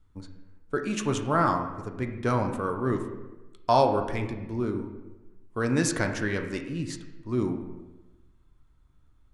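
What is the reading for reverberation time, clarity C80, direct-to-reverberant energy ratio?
1.1 s, 9.5 dB, 4.0 dB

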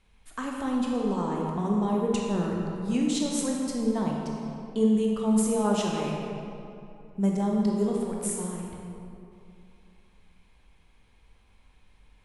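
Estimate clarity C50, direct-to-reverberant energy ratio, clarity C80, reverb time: 0.0 dB, −2.0 dB, 1.5 dB, 2.7 s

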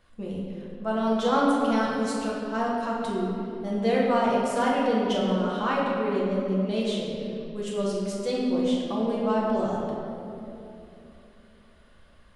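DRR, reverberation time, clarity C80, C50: −5.5 dB, 3.0 s, 0.5 dB, −1.0 dB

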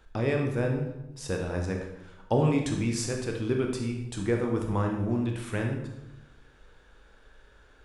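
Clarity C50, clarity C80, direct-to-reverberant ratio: 4.5 dB, 7.5 dB, 1.5 dB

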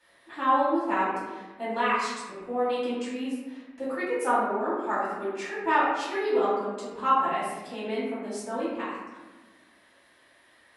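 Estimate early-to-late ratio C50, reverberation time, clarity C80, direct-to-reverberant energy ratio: −1.0 dB, 1.2 s, 2.0 dB, −11.0 dB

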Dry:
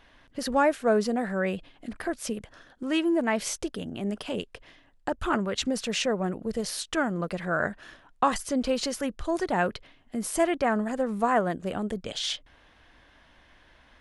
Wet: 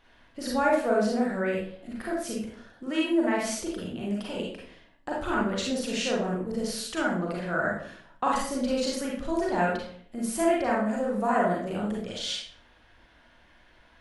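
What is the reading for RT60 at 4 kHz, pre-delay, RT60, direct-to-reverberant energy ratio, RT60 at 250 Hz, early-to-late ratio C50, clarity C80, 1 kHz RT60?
0.40 s, 33 ms, 0.55 s, −4.0 dB, 0.65 s, 1.5 dB, 6.5 dB, 0.55 s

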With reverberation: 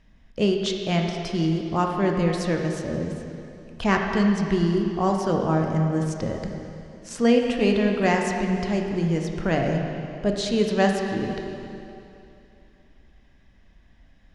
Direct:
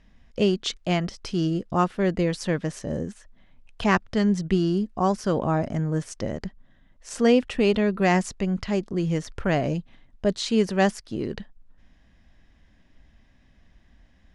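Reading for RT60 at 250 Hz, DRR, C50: 2.9 s, 1.5 dB, 3.0 dB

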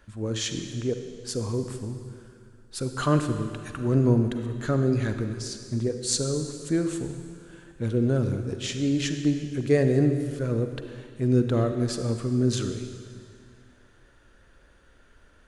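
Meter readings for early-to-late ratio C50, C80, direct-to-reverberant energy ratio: 7.5 dB, 8.5 dB, 7.0 dB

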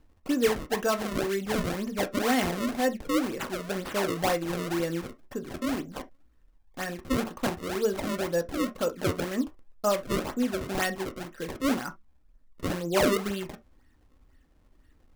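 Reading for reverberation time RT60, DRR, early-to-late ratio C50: non-exponential decay, 6.0 dB, 19.0 dB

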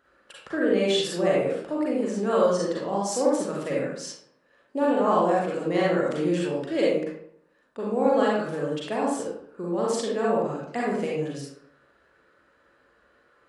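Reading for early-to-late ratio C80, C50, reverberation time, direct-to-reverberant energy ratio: 3.5 dB, −1.5 dB, 0.70 s, −5.5 dB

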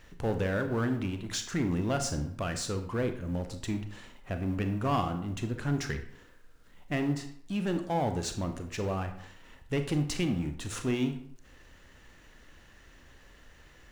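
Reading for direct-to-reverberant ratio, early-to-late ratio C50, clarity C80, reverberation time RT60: 7.0 dB, 10.0 dB, 13.0 dB, 0.65 s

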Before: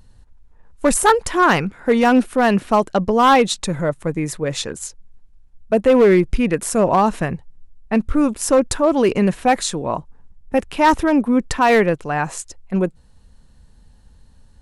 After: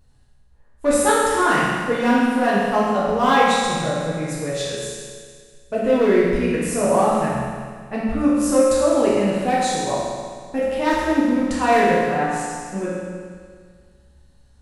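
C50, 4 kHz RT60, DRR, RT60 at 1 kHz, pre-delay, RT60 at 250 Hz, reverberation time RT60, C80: −2.0 dB, 1.8 s, −8.0 dB, 1.8 s, 5 ms, 1.8 s, 1.8 s, 0.0 dB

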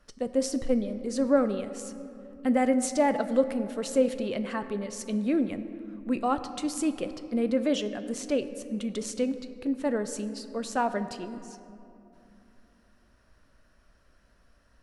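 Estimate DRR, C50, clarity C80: 10.0 dB, 11.5 dB, 12.0 dB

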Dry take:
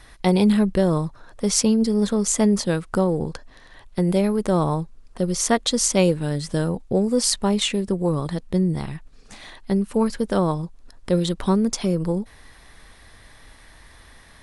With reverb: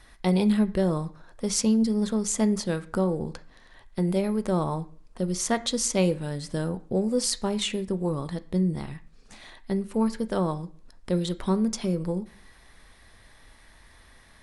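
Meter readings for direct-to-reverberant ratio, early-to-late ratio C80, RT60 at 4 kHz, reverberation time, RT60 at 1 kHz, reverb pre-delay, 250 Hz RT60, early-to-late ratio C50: 10.5 dB, 21.5 dB, 0.50 s, 0.55 s, 0.50 s, 3 ms, 0.60 s, 17.5 dB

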